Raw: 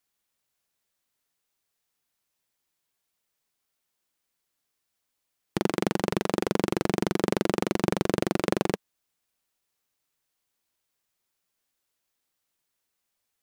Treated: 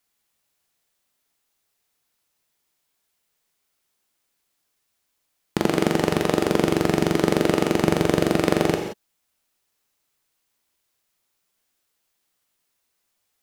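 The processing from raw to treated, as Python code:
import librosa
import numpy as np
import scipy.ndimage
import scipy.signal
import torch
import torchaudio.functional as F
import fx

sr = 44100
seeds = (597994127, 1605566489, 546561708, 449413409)

y = fx.rev_gated(x, sr, seeds[0], gate_ms=200, shape='flat', drr_db=3.5)
y = F.gain(torch.from_numpy(y), 4.5).numpy()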